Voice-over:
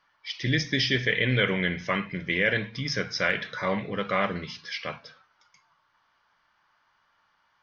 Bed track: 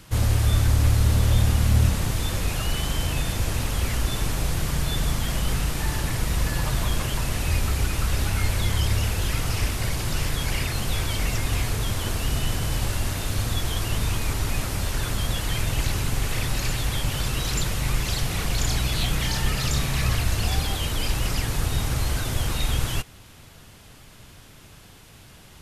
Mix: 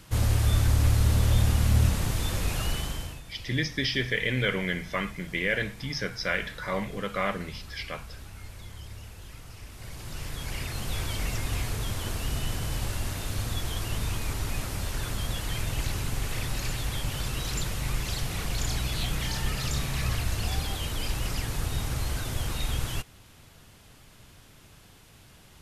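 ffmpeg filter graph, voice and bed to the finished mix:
ffmpeg -i stem1.wav -i stem2.wav -filter_complex "[0:a]adelay=3050,volume=-3dB[link_01];[1:a]volume=11.5dB,afade=type=out:start_time=2.66:duration=0.55:silence=0.141254,afade=type=in:start_time=9.66:duration=1.37:silence=0.188365[link_02];[link_01][link_02]amix=inputs=2:normalize=0" out.wav

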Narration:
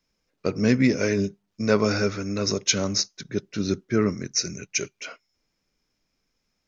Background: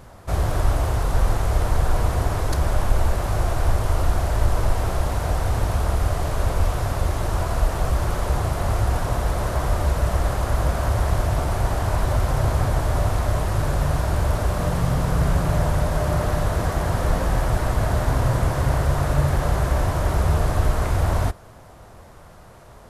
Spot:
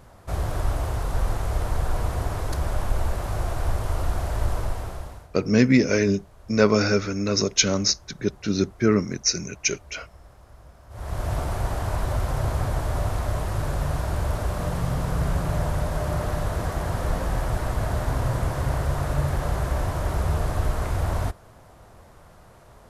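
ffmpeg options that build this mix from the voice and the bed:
ffmpeg -i stem1.wav -i stem2.wav -filter_complex "[0:a]adelay=4900,volume=2.5dB[link_01];[1:a]volume=18dB,afade=type=out:start_time=4.51:duration=0.78:silence=0.0749894,afade=type=in:start_time=10.89:duration=0.43:silence=0.0707946[link_02];[link_01][link_02]amix=inputs=2:normalize=0" out.wav

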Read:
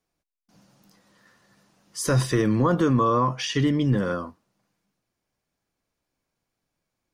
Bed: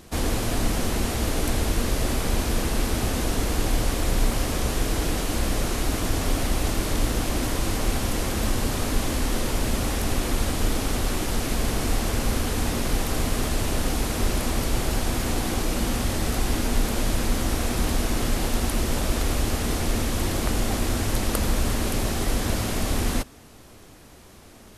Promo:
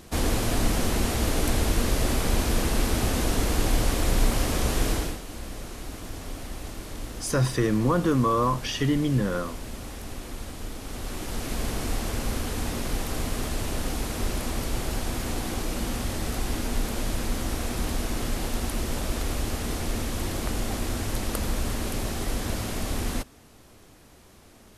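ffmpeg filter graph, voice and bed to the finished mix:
ffmpeg -i stem1.wav -i stem2.wav -filter_complex "[0:a]adelay=5250,volume=-2dB[link_01];[1:a]volume=8dB,afade=type=out:start_time=4.9:duration=0.29:silence=0.237137,afade=type=in:start_time=10.8:duration=0.8:silence=0.398107[link_02];[link_01][link_02]amix=inputs=2:normalize=0" out.wav

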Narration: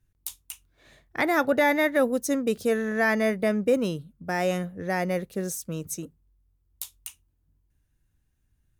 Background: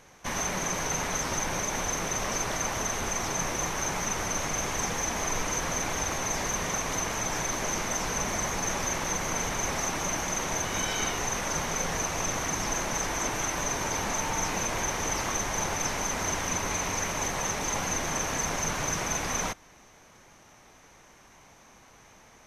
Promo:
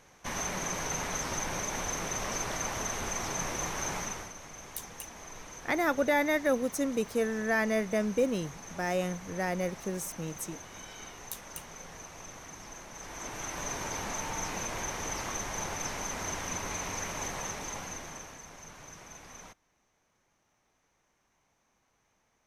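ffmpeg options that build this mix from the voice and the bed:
ffmpeg -i stem1.wav -i stem2.wav -filter_complex "[0:a]adelay=4500,volume=-5dB[link_01];[1:a]volume=6.5dB,afade=type=out:start_time=3.95:duration=0.38:silence=0.237137,afade=type=in:start_time=12.94:duration=0.76:silence=0.298538,afade=type=out:start_time=17.31:duration=1.09:silence=0.223872[link_02];[link_01][link_02]amix=inputs=2:normalize=0" out.wav

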